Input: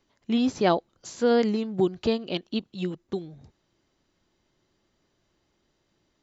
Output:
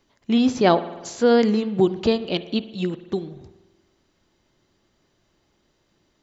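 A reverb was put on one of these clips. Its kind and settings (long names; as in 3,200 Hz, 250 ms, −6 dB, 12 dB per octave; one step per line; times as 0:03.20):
spring reverb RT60 1.2 s, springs 47 ms, chirp 30 ms, DRR 13.5 dB
level +5 dB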